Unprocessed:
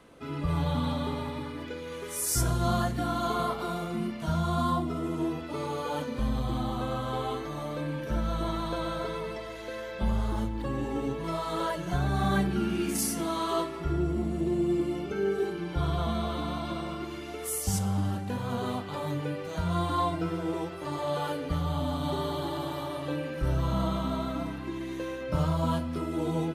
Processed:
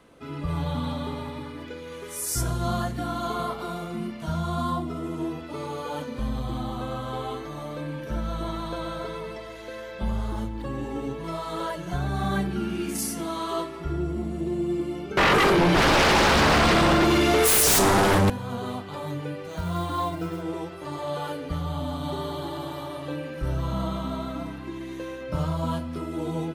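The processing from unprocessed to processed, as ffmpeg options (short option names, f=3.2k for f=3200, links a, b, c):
-filter_complex "[0:a]asettb=1/sr,asplit=3[a][b][c];[a]atrim=end=15.174[d];[b]atrim=start=15.17:end=18.3,asetpts=PTS-STARTPTS,afade=t=in:d=0.004:c=qsin,afade=t=out:st=3.126:d=0.004:c=qsin,aeval=exprs='0.168*sin(PI/2*7.94*val(0)/0.168)':c=same[e];[c]atrim=start=18.296[f];[d][e]acrossfade=d=0.004:c1=hsin:c2=qsin[g];[g][f]acrossfade=d=0.004:c1=qsin:c2=hsin,asettb=1/sr,asplit=3[h][i][j];[h]atrim=end=19.514[k];[i]atrim=start=19.51:end=20.42,asetpts=PTS-STARTPTS,afade=t=in:d=0.004:c=qsin,afade=t=out:st=0.906:d=0.004:c=qsin,acrusher=bits=6:mode=log:mix=0:aa=0.000001[l];[j]atrim=start=20.416[m];[k][l]acrossfade=d=0.004:c1=hsin:c2=qsin[n];[n][m]acrossfade=d=0.004:c1=qsin:c2=hsin"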